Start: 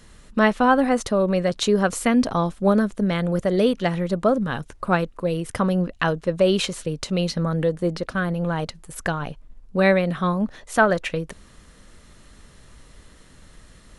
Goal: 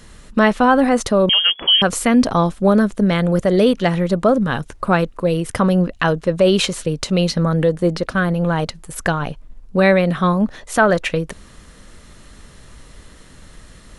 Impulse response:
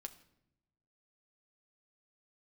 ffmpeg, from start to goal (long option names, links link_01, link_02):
-filter_complex "[0:a]asplit=2[link_01][link_02];[link_02]alimiter=limit=-13dB:level=0:latency=1:release=20,volume=2dB[link_03];[link_01][link_03]amix=inputs=2:normalize=0,asettb=1/sr,asplit=3[link_04][link_05][link_06];[link_04]atrim=end=1.294[link_07];[link_05]atrim=start=1.29:end=1.82,asetpts=PTS-STARTPTS,afade=type=in:duration=0.004:curve=qsin,afade=type=out:start_time=0.526:duration=0.004:curve=qsin,lowpass=frequency=2900:width_type=q:width=0.5098,lowpass=frequency=2900:width_type=q:width=0.6013,lowpass=frequency=2900:width_type=q:width=0.9,lowpass=frequency=2900:width_type=q:width=2.563,afreqshift=-3400[link_08];[link_06]atrim=start=1.816[link_09];[link_07][link_08]acrossfade=duration=0.004:curve1=hsin:curve2=qsin[link_10];[link_10][link_09]acrossfade=duration=0.004:curve1=qsin:curve2=hsin,volume=-1dB"